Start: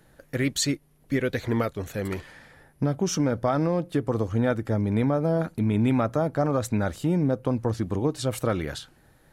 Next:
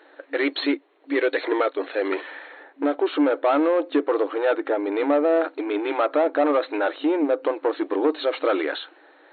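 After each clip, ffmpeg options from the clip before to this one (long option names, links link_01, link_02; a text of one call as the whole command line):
ffmpeg -i in.wav -filter_complex "[0:a]asplit=2[link_01][link_02];[link_02]highpass=frequency=720:poles=1,volume=18dB,asoftclip=type=tanh:threshold=-11.5dB[link_03];[link_01][link_03]amix=inputs=2:normalize=0,lowpass=frequency=2300:poles=1,volume=-6dB,lowshelf=frequency=370:gain=5.5,afftfilt=real='re*between(b*sr/4096,270,4300)':imag='im*between(b*sr/4096,270,4300)':win_size=4096:overlap=0.75" out.wav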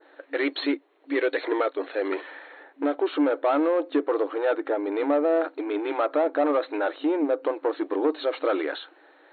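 ffmpeg -i in.wav -af "adynamicequalizer=threshold=0.00708:dfrequency=2800:dqfactor=0.95:tfrequency=2800:tqfactor=0.95:attack=5:release=100:ratio=0.375:range=1.5:mode=cutabove:tftype=bell,volume=-2.5dB" out.wav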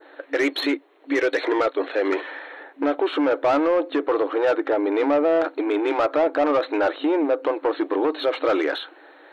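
ffmpeg -i in.wav -filter_complex "[0:a]acrossover=split=670[link_01][link_02];[link_01]alimiter=limit=-23dB:level=0:latency=1:release=74[link_03];[link_02]asoftclip=type=tanh:threshold=-26.5dB[link_04];[link_03][link_04]amix=inputs=2:normalize=0,volume=7dB" out.wav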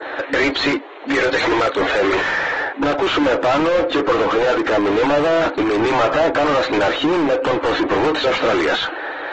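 ffmpeg -i in.wav -filter_complex "[0:a]asplit=2[link_01][link_02];[link_02]highpass=frequency=720:poles=1,volume=30dB,asoftclip=type=tanh:threshold=-11.5dB[link_03];[link_01][link_03]amix=inputs=2:normalize=0,lowpass=frequency=2600:poles=1,volume=-6dB" -ar 48000 -c:a aac -b:a 24k out.aac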